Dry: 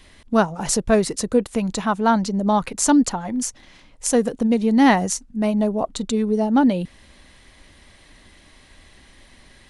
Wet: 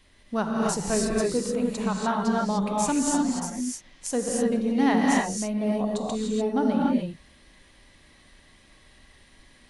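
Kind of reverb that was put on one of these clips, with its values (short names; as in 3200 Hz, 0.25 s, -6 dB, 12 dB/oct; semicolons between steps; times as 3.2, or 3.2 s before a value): non-linear reverb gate 0.32 s rising, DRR -3 dB; gain -10 dB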